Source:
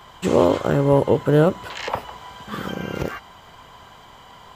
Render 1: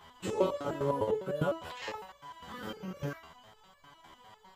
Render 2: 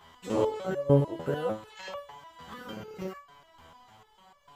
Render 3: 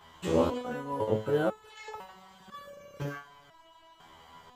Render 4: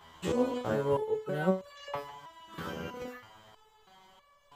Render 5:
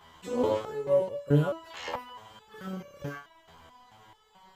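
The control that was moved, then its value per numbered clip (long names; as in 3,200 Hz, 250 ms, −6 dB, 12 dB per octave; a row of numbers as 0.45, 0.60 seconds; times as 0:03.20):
step-sequenced resonator, speed: 9.9, 6.7, 2, 3.1, 4.6 Hertz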